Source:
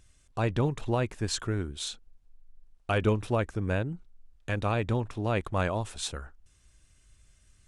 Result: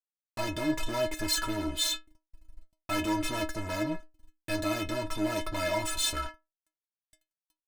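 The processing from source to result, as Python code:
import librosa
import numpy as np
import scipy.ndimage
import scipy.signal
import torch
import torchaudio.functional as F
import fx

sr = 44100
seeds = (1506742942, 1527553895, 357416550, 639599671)

y = fx.diode_clip(x, sr, knee_db=-30.0)
y = fx.fuzz(y, sr, gain_db=44.0, gate_db=-50.0)
y = fx.stiff_resonator(y, sr, f0_hz=310.0, decay_s=0.23, stiffness=0.008)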